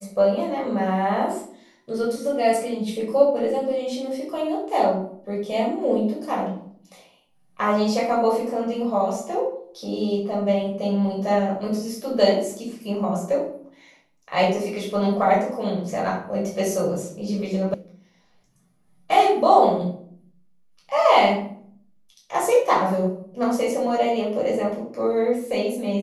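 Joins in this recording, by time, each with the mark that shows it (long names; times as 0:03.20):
0:17.74: cut off before it has died away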